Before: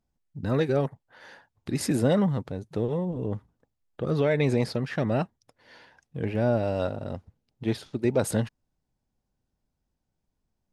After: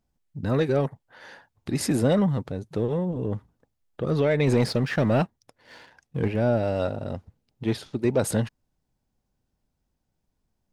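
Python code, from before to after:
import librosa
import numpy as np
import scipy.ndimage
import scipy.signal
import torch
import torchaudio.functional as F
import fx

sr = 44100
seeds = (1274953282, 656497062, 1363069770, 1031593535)

p1 = fx.leveller(x, sr, passes=1, at=(4.47, 6.28))
p2 = 10.0 ** (-26.5 / 20.0) * np.tanh(p1 / 10.0 ** (-26.5 / 20.0))
y = p1 + (p2 * 10.0 ** (-8.0 / 20.0))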